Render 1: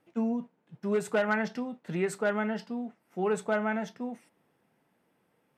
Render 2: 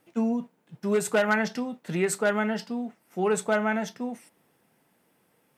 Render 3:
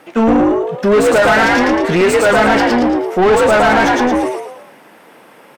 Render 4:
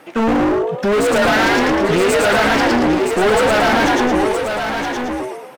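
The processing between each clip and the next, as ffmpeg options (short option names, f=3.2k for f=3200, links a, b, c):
-af "highshelf=f=4.5k:g=10.5,volume=3.5dB"
-filter_complex "[0:a]asplit=6[a][b][c][d][e][f];[b]adelay=112,afreqshift=67,volume=-3dB[g];[c]adelay=224,afreqshift=134,volume=-11dB[h];[d]adelay=336,afreqshift=201,volume=-18.9dB[i];[e]adelay=448,afreqshift=268,volume=-26.9dB[j];[f]adelay=560,afreqshift=335,volume=-34.8dB[k];[a][g][h][i][j][k]amix=inputs=6:normalize=0,asplit=2[l][m];[m]highpass=f=720:p=1,volume=29dB,asoftclip=type=tanh:threshold=-8.5dB[n];[l][n]amix=inputs=2:normalize=0,lowpass=f=1.6k:p=1,volume=-6dB,volume=6dB"
-filter_complex "[0:a]asoftclip=type=hard:threshold=-13.5dB,asplit=2[a][b];[b]aecho=0:1:969:0.501[c];[a][c]amix=inputs=2:normalize=0"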